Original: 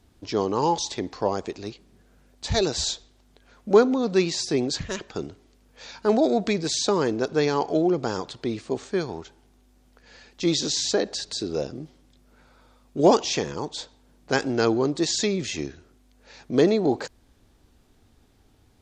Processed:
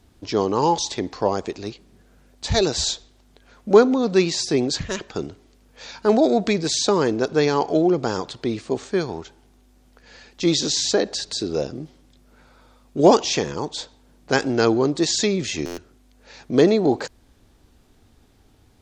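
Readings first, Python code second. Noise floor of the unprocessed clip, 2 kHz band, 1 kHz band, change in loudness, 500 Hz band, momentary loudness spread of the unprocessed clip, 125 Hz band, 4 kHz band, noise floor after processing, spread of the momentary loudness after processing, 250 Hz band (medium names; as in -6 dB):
-60 dBFS, +3.5 dB, +3.5 dB, +3.5 dB, +3.5 dB, 15 LU, +3.5 dB, +3.5 dB, -56 dBFS, 15 LU, +3.5 dB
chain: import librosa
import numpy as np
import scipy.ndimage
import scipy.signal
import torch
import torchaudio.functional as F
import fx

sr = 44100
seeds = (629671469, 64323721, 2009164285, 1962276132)

y = fx.buffer_glitch(x, sr, at_s=(15.65,), block=512, repeats=10)
y = y * librosa.db_to_amplitude(3.5)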